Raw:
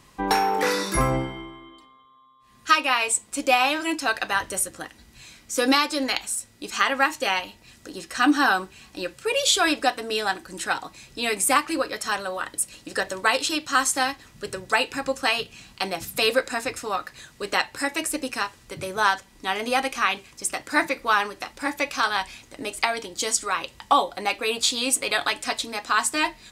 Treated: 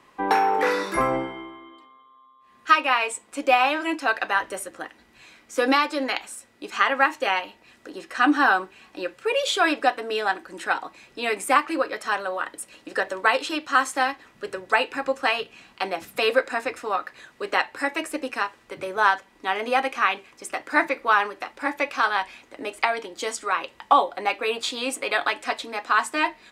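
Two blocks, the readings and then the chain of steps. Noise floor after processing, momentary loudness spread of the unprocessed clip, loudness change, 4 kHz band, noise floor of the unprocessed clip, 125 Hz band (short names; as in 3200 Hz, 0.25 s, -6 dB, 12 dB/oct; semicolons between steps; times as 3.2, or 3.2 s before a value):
-57 dBFS, 12 LU, 0.0 dB, -4.5 dB, -54 dBFS, under -10 dB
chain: three-band isolator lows -16 dB, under 250 Hz, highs -13 dB, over 2900 Hz; gain +2 dB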